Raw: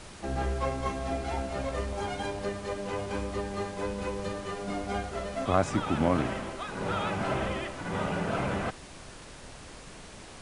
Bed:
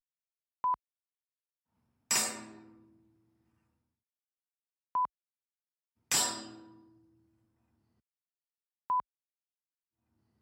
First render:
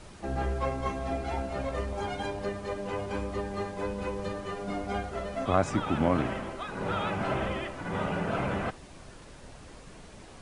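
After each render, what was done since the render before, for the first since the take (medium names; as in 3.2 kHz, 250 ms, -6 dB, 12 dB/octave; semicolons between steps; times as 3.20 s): noise reduction 6 dB, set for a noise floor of -47 dBFS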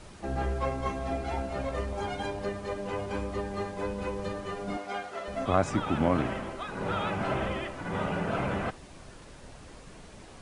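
4.77–5.28 s: frequency weighting A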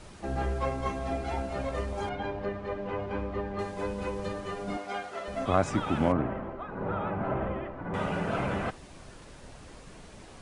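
2.09–3.59 s: low-pass 2.6 kHz; 6.12–7.94 s: low-pass 1.3 kHz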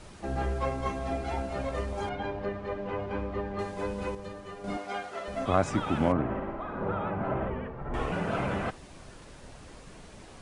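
4.15–4.64 s: gain -6.5 dB; 6.23–6.91 s: flutter echo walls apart 9.8 m, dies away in 0.87 s; 7.50–8.12 s: frequency shift -140 Hz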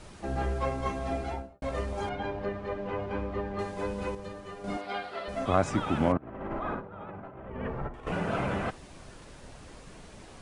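1.20–1.62 s: studio fade out; 4.81–5.29 s: resonant high shelf 5.2 kHz -6 dB, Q 3; 6.17–8.07 s: compressor with a negative ratio -37 dBFS, ratio -0.5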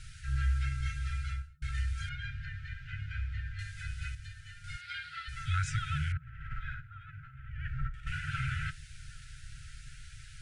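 FFT band-reject 160–1300 Hz; bass shelf 100 Hz +5 dB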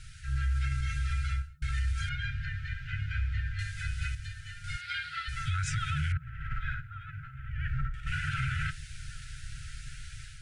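level rider gain up to 5.5 dB; peak limiter -23 dBFS, peak gain reduction 8.5 dB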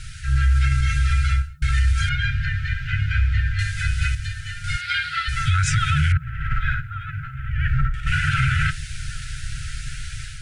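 trim +12 dB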